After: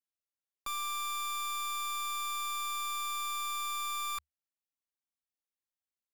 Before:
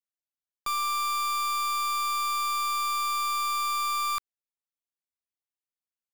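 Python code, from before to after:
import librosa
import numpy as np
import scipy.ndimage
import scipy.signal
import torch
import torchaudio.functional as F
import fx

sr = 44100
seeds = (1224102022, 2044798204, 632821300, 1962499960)

y = fx.peak_eq(x, sr, hz=75.0, db=6.0, octaves=0.33)
y = y + 0.68 * np.pad(y, (int(3.7 * sr / 1000.0), 0))[:len(y)]
y = y * librosa.db_to_amplitude(-7.0)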